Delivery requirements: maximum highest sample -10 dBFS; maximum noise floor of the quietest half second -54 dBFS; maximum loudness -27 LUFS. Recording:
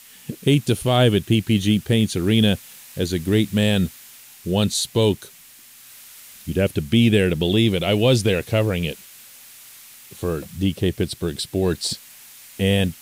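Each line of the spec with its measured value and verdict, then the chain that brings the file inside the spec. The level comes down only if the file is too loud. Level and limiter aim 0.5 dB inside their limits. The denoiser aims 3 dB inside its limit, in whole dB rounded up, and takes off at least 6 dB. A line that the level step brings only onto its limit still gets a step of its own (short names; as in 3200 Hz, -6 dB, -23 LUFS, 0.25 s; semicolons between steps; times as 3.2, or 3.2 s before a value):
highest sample -5.5 dBFS: fail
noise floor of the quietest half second -47 dBFS: fail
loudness -20.5 LUFS: fail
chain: denoiser 6 dB, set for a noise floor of -47 dBFS; gain -7 dB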